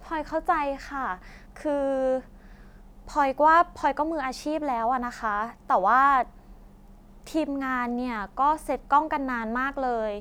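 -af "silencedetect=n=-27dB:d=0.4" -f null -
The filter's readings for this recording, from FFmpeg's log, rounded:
silence_start: 1.14
silence_end: 1.65 | silence_duration: 0.52
silence_start: 2.19
silence_end: 3.16 | silence_duration: 0.97
silence_start: 6.22
silence_end: 7.35 | silence_duration: 1.13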